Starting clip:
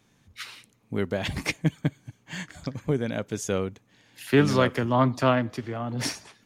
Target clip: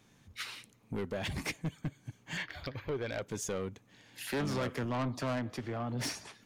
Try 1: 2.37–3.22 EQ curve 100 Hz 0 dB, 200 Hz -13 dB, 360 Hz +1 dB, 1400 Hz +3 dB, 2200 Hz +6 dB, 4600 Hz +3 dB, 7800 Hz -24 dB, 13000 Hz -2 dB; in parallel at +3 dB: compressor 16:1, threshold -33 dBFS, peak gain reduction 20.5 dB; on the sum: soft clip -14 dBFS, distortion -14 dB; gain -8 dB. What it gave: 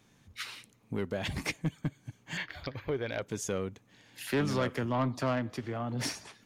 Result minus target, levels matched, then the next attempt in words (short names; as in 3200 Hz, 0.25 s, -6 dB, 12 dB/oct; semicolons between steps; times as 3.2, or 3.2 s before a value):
soft clip: distortion -7 dB
2.37–3.22 EQ curve 100 Hz 0 dB, 200 Hz -13 dB, 360 Hz +1 dB, 1400 Hz +3 dB, 2200 Hz +6 dB, 4600 Hz +3 dB, 7800 Hz -24 dB, 13000 Hz -2 dB; in parallel at +3 dB: compressor 16:1, threshold -33 dBFS, peak gain reduction 20.5 dB; on the sum: soft clip -21.5 dBFS, distortion -8 dB; gain -8 dB